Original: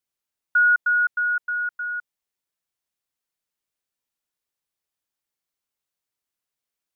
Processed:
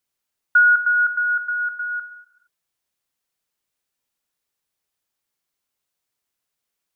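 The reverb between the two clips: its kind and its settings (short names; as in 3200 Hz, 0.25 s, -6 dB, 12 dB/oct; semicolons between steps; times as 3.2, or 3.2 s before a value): non-linear reverb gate 0.49 s falling, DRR 11.5 dB; gain +5 dB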